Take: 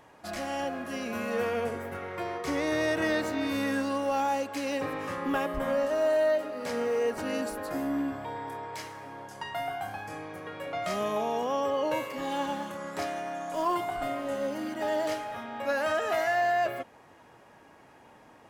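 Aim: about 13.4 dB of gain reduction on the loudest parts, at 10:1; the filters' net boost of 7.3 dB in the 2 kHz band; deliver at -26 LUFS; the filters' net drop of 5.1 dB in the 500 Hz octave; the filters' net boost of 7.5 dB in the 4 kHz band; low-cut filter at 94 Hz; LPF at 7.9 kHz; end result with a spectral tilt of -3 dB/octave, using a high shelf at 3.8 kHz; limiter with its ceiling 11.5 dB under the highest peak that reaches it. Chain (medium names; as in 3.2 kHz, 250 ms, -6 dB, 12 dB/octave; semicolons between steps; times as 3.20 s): high-pass 94 Hz; low-pass 7.9 kHz; peaking EQ 500 Hz -7.5 dB; peaking EQ 2 kHz +7 dB; treble shelf 3.8 kHz +6.5 dB; peaking EQ 4 kHz +3.5 dB; compression 10:1, threshold -35 dBFS; trim +17.5 dB; peak limiter -18 dBFS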